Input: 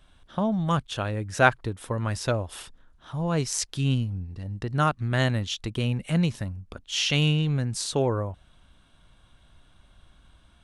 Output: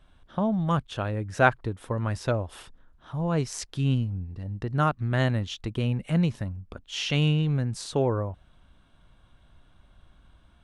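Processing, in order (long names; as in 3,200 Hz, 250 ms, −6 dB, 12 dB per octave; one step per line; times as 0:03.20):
high-shelf EQ 2,900 Hz −9 dB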